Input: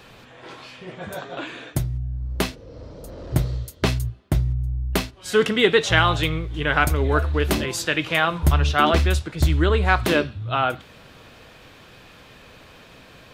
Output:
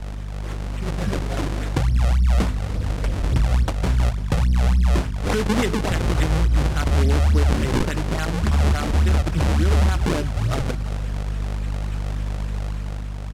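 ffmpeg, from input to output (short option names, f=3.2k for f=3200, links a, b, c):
-filter_complex "[0:a]asplit=2[a][b];[b]acompressor=threshold=-30dB:ratio=6,volume=-1dB[c];[a][c]amix=inputs=2:normalize=0,alimiter=limit=-12.5dB:level=0:latency=1:release=218,equalizer=f=120:w=2:g=-7.5,aeval=exprs='val(0)+0.0178*(sin(2*PI*50*n/s)+sin(2*PI*2*50*n/s)/2+sin(2*PI*3*50*n/s)/3+sin(2*PI*4*50*n/s)/4+sin(2*PI*5*50*n/s)/5)':c=same,acrossover=split=130[d][e];[d]aeval=exprs='0.0668*(abs(mod(val(0)/0.0668+3,4)-2)-1)':c=same[f];[f][e]amix=inputs=2:normalize=0,dynaudnorm=f=130:g=11:m=4dB,bass=f=250:g=13,treble=f=4k:g=12,acrusher=samples=39:mix=1:aa=0.000001:lfo=1:lforange=62.4:lforate=3.5,asoftclip=type=tanh:threshold=-3.5dB,lowpass=9.9k,aecho=1:1:341:0.158,volume=-6dB"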